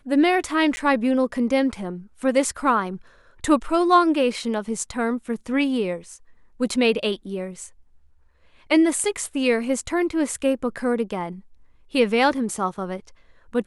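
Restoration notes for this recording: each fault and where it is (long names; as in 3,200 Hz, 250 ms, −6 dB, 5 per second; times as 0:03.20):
0:00.76–0:00.77: drop-out 10 ms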